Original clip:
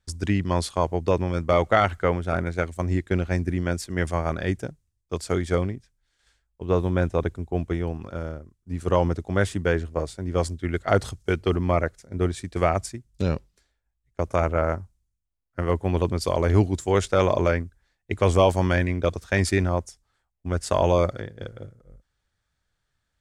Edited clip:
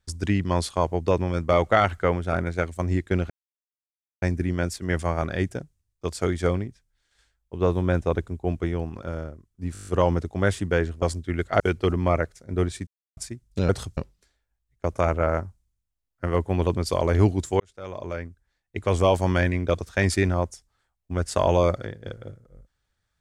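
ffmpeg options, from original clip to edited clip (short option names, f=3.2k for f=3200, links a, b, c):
-filter_complex "[0:a]asplit=16[a][b][c][d][e][f][g][h][i][j][k][l][m][n][o][p];[a]atrim=end=3.3,asetpts=PTS-STARTPTS,afade=t=out:st=3.296:d=0.004:c=hsin,apad=pad_dur=0.92[q];[b]atrim=start=3.3:end=8.832,asetpts=PTS-STARTPTS,afade=t=in:d=0.004:c=hsin[r];[c]atrim=start=8.808:end=8.832[s];[d]atrim=start=8.808:end=8.832[t];[e]atrim=start=8.808:end=8.832[u];[f]atrim=start=8.808:end=8.832[v];[g]atrim=start=8.808:end=8.832[w];[h]atrim=start=8.808:end=8.832[x];[i]atrim=start=8.808:end=9.962[y];[j]atrim=start=10.368:end=10.952[z];[k]atrim=start=11.228:end=12.5,asetpts=PTS-STARTPTS,afade=t=out:st=1.268:d=0.004:c=hsin[aa];[l]atrim=start=12.5:end=12.8,asetpts=PTS-STARTPTS,volume=0[ab];[m]atrim=start=12.8:end=13.322,asetpts=PTS-STARTPTS,afade=t=in:d=0.004:c=hsin[ac];[n]atrim=start=10.948:end=11.232[ad];[o]atrim=start=13.318:end=16.95,asetpts=PTS-STARTPTS,afade=t=out:st=3.628:d=0.004:c=hsin[ae];[p]atrim=start=16.95,asetpts=PTS-STARTPTS,afade=t=in:d=1.78[af];[q][r]concat=n=2:v=0:a=1[ag];[ag][s]acrossfade=d=0.004:c1=hsin:c2=hsin[ah];[ah][t]acrossfade=d=0.004:c1=hsin:c2=hsin[ai];[ai][u]acrossfade=d=0.004:c1=hsin:c2=hsin[aj];[aj][v]acrossfade=d=0.004:c1=hsin:c2=hsin[ak];[ak][w]acrossfade=d=0.004:c1=hsin:c2=hsin[al];[al][x]acrossfade=d=0.004:c1=hsin:c2=hsin[am];[am][y]acrossfade=d=0.004:c1=hsin:c2=hsin[an];[an][z]acrossfade=d=0.004:c1=hsin:c2=hsin[ao];[aa][ab][ac]concat=n=3:v=0:a=1[ap];[ao][ap]acrossfade=d=0.004:c1=hsin:c2=hsin[aq];[aq][ad]acrossfade=d=0.004:c1=hsin:c2=hsin[ar];[ae][af]concat=n=2:v=0:a=1[as];[ar][as]acrossfade=d=0.004:c1=hsin:c2=hsin"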